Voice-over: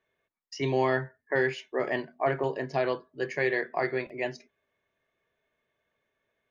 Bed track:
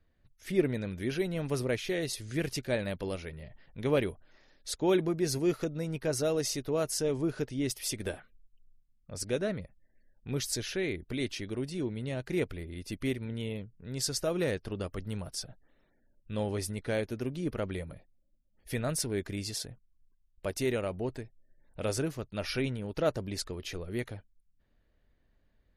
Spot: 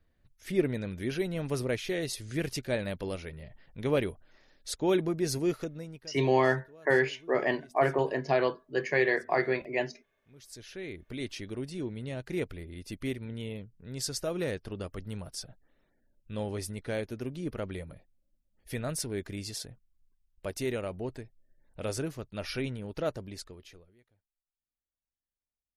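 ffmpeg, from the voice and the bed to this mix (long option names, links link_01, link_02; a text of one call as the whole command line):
ffmpeg -i stem1.wav -i stem2.wav -filter_complex "[0:a]adelay=5550,volume=1.5dB[link_01];[1:a]volume=21.5dB,afade=type=out:start_time=5.43:duration=0.68:silence=0.0668344,afade=type=in:start_time=10.36:duration=1.04:silence=0.0841395,afade=type=out:start_time=22.92:duration=1.03:silence=0.0354813[link_02];[link_01][link_02]amix=inputs=2:normalize=0" out.wav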